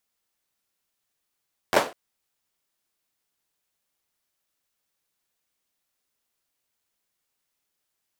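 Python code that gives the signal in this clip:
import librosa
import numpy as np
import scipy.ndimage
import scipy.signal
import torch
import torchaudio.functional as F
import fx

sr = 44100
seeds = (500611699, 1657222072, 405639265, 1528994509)

y = fx.drum_clap(sr, seeds[0], length_s=0.2, bursts=4, spacing_ms=11, hz=580.0, decay_s=0.3)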